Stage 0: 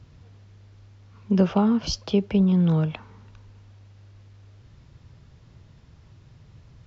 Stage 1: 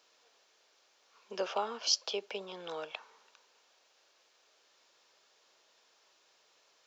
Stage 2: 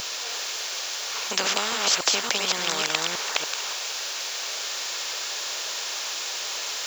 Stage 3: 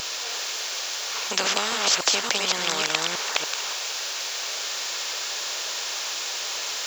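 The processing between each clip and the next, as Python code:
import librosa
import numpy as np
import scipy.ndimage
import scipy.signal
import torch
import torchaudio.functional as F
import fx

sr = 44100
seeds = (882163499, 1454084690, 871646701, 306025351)

y1 = scipy.signal.sosfilt(scipy.signal.butter(4, 470.0, 'highpass', fs=sr, output='sos'), x)
y1 = fx.high_shelf(y1, sr, hz=3500.0, db=11.5)
y1 = fx.notch(y1, sr, hz=2000.0, q=18.0)
y1 = y1 * librosa.db_to_amplitude(-6.5)
y2 = fx.reverse_delay(y1, sr, ms=287, wet_db=-4.0)
y2 = fx.tilt_eq(y2, sr, slope=3.0)
y2 = fx.spectral_comp(y2, sr, ratio=4.0)
y2 = y2 * librosa.db_to_amplitude(4.5)
y3 = fx.doppler_dist(y2, sr, depth_ms=0.12)
y3 = y3 * librosa.db_to_amplitude(1.0)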